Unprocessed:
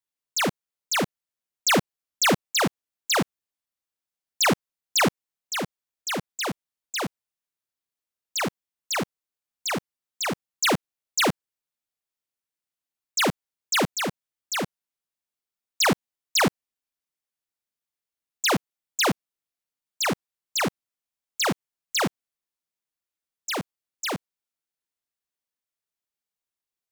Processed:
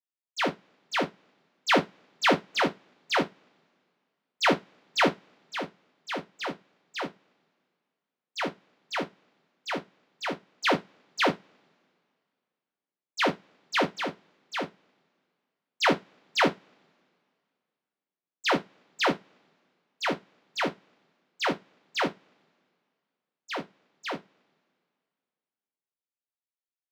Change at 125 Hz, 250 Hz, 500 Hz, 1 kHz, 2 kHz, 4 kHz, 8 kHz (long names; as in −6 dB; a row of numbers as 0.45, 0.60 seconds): −8.0, −3.5, −1.0, −1.0, −2.0, −5.5, −16.5 decibels